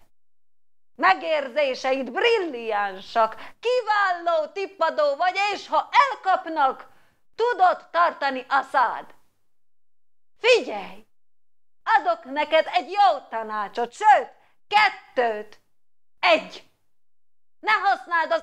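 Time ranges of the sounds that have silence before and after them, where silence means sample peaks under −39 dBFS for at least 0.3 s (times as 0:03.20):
0:00.99–0:06.86
0:07.39–0:09.11
0:10.44–0:11.00
0:11.86–0:14.29
0:14.71–0:15.54
0:16.23–0:16.59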